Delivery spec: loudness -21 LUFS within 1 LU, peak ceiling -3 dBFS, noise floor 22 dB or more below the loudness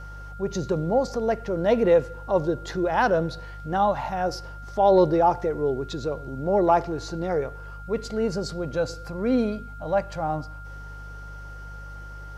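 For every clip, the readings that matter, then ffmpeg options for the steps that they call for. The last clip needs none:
hum 50 Hz; harmonics up to 150 Hz; hum level -37 dBFS; steady tone 1400 Hz; tone level -42 dBFS; loudness -25.0 LUFS; peak -8.0 dBFS; loudness target -21.0 LUFS
-> -af "bandreject=f=50:t=h:w=4,bandreject=f=100:t=h:w=4,bandreject=f=150:t=h:w=4"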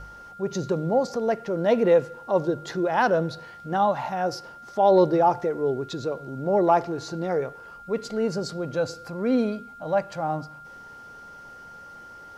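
hum none; steady tone 1400 Hz; tone level -42 dBFS
-> -af "bandreject=f=1.4k:w=30"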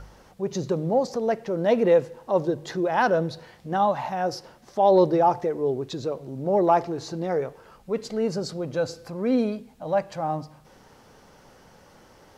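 steady tone none; loudness -25.0 LUFS; peak -8.5 dBFS; loudness target -21.0 LUFS
-> -af "volume=4dB"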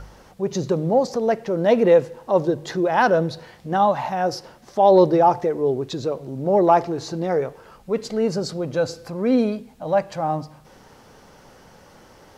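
loudness -21.0 LUFS; peak -4.5 dBFS; noise floor -50 dBFS

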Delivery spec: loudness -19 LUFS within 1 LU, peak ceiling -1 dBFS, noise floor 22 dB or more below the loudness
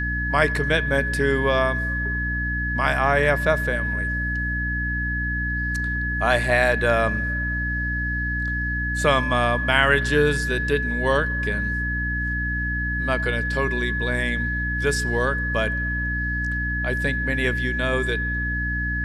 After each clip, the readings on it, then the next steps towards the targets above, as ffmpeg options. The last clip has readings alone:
hum 60 Hz; harmonics up to 300 Hz; hum level -25 dBFS; steady tone 1700 Hz; tone level -25 dBFS; loudness -22.5 LUFS; peak -3.5 dBFS; loudness target -19.0 LUFS
-> -af "bandreject=f=60:t=h:w=6,bandreject=f=120:t=h:w=6,bandreject=f=180:t=h:w=6,bandreject=f=240:t=h:w=6,bandreject=f=300:t=h:w=6"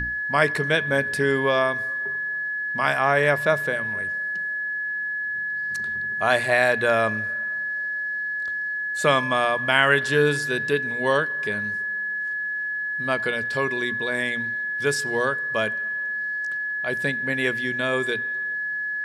hum none; steady tone 1700 Hz; tone level -25 dBFS
-> -af "bandreject=f=1.7k:w=30"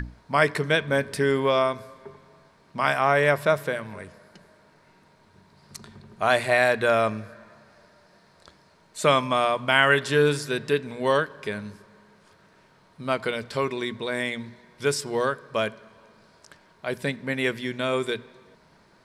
steady tone none; loudness -24.0 LUFS; peak -3.5 dBFS; loudness target -19.0 LUFS
-> -af "volume=5dB,alimiter=limit=-1dB:level=0:latency=1"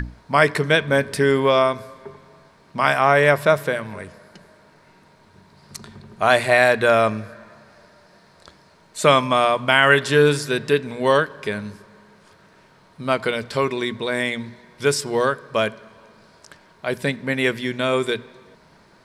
loudness -19.5 LUFS; peak -1.0 dBFS; noise floor -54 dBFS

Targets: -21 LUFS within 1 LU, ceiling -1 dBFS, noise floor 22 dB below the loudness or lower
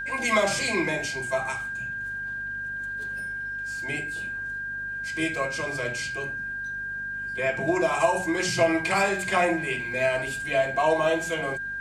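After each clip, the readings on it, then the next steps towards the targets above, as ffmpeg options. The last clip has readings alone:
hum 50 Hz; harmonics up to 250 Hz; hum level -48 dBFS; steady tone 1600 Hz; tone level -30 dBFS; loudness -26.5 LUFS; peak -9.5 dBFS; loudness target -21.0 LUFS
-> -af "bandreject=f=50:t=h:w=4,bandreject=f=100:t=h:w=4,bandreject=f=150:t=h:w=4,bandreject=f=200:t=h:w=4,bandreject=f=250:t=h:w=4"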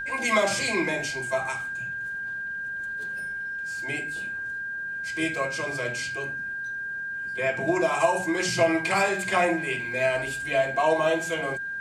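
hum none; steady tone 1600 Hz; tone level -30 dBFS
-> -af "bandreject=f=1.6k:w=30"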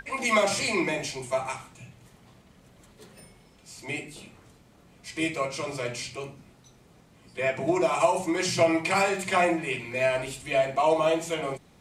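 steady tone none; loudness -26.5 LUFS; peak -9.0 dBFS; loudness target -21.0 LUFS
-> -af "volume=5.5dB"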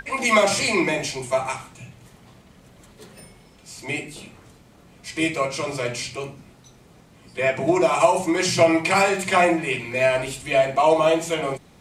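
loudness -21.0 LUFS; peak -3.5 dBFS; noise floor -52 dBFS

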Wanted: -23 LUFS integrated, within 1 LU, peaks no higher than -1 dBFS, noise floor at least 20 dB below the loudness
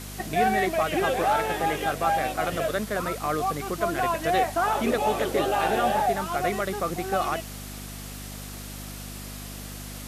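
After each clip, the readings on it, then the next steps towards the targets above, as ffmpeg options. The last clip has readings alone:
hum 50 Hz; harmonics up to 250 Hz; hum level -37 dBFS; noise floor -38 dBFS; noise floor target -46 dBFS; loudness -25.5 LUFS; peak -12.5 dBFS; loudness target -23.0 LUFS
-> -af "bandreject=f=50:t=h:w=4,bandreject=f=100:t=h:w=4,bandreject=f=150:t=h:w=4,bandreject=f=200:t=h:w=4,bandreject=f=250:t=h:w=4"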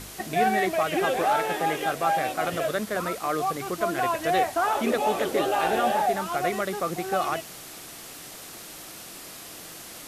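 hum none; noise floor -42 dBFS; noise floor target -46 dBFS
-> -af "afftdn=nr=6:nf=-42"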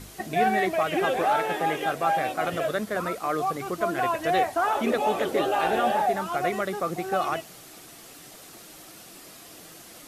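noise floor -47 dBFS; loudness -26.0 LUFS; peak -13.0 dBFS; loudness target -23.0 LUFS
-> -af "volume=3dB"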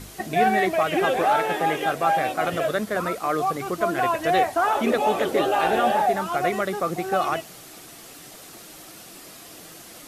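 loudness -23.0 LUFS; peak -10.0 dBFS; noise floor -44 dBFS

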